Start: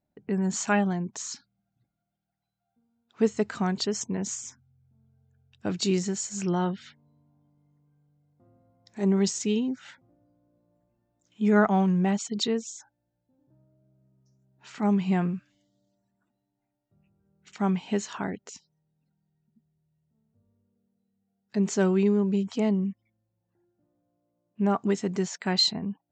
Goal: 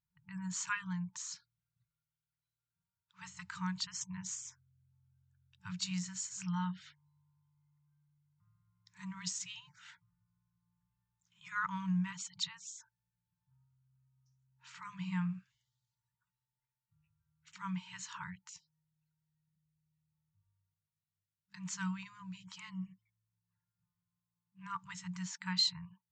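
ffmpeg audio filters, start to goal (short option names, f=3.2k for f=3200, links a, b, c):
-af "afftfilt=real='re*(1-between(b*sr/4096,190,880))':imag='im*(1-between(b*sr/4096,190,880))':win_size=4096:overlap=0.75,volume=-7.5dB"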